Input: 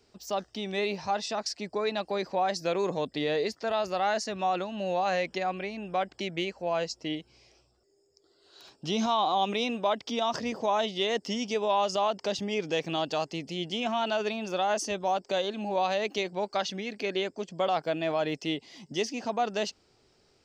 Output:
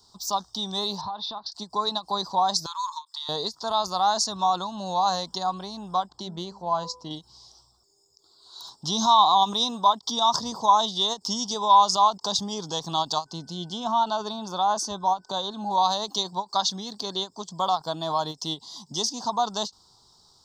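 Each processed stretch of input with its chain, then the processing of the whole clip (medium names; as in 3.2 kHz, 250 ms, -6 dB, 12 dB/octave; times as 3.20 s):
1.01–1.52 s: steep low-pass 3.9 kHz + compression, threshold -36 dBFS
2.66–3.29 s: brick-wall FIR high-pass 850 Hz + compression 1.5:1, threshold -45 dBFS
6.09–7.11 s: treble shelf 3.2 kHz -11 dB + de-hum 100.1 Hz, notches 12
13.25–15.69 s: treble shelf 3.6 kHz -9.5 dB + whistle 1.5 kHz -60 dBFS
whole clip: FFT filter 180 Hz 0 dB, 300 Hz -7 dB, 570 Hz -9 dB, 1 kHz +12 dB, 2.4 kHz -28 dB, 3.6 kHz +9 dB; endings held to a fixed fall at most 390 dB/s; trim +3 dB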